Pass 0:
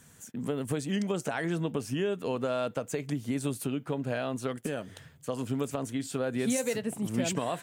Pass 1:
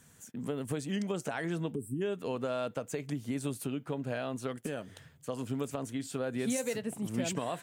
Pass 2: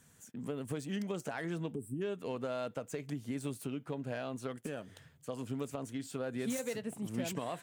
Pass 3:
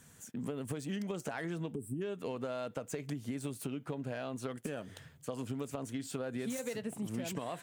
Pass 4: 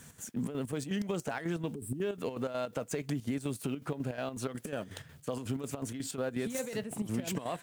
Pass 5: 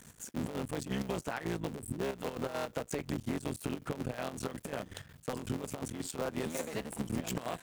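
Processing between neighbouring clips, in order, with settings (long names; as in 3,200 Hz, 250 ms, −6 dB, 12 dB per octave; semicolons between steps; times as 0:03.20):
gain on a spectral selection 0:01.75–0:02.02, 440–7,500 Hz −30 dB; level −3.5 dB
phase distortion by the signal itself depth 0.056 ms; level −3.5 dB
downward compressor, threshold −39 dBFS, peak gain reduction 8 dB; level +4.5 dB
in parallel at +1 dB: brickwall limiter −33 dBFS, peak gain reduction 9 dB; on the sum: background noise white −69 dBFS; square-wave tremolo 5.5 Hz, depth 60%, duty 60%
sub-harmonics by changed cycles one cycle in 3, muted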